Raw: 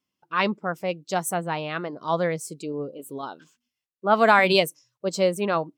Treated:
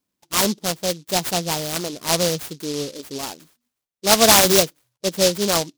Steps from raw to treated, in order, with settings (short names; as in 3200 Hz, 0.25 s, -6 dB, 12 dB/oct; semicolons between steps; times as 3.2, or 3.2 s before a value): 4.64–5.35 tone controls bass -1 dB, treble -12 dB; noise-modulated delay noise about 4600 Hz, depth 0.18 ms; gain +4 dB